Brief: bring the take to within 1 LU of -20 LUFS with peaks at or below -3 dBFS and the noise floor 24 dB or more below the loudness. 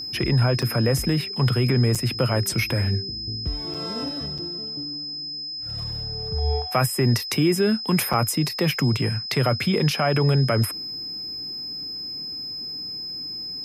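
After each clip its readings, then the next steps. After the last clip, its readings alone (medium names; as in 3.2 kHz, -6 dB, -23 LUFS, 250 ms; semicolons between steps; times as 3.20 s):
dropouts 5; longest dropout 5.6 ms; steady tone 5.1 kHz; tone level -30 dBFS; loudness -23.5 LUFS; peak level -7.0 dBFS; loudness target -20.0 LUFS
-> interpolate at 0.62/1.95/3.74/4.38/8.13 s, 5.6 ms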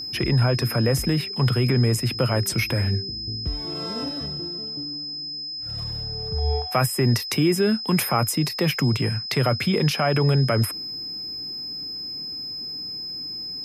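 dropouts 0; steady tone 5.1 kHz; tone level -30 dBFS
-> band-stop 5.1 kHz, Q 30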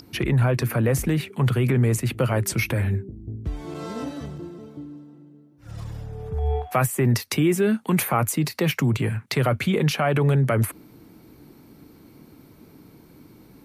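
steady tone not found; loudness -23.0 LUFS; peak level -8.0 dBFS; loudness target -20.0 LUFS
-> trim +3 dB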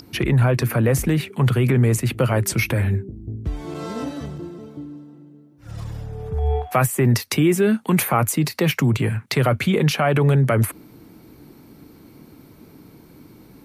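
loudness -20.0 LUFS; peak level -5.0 dBFS; noise floor -48 dBFS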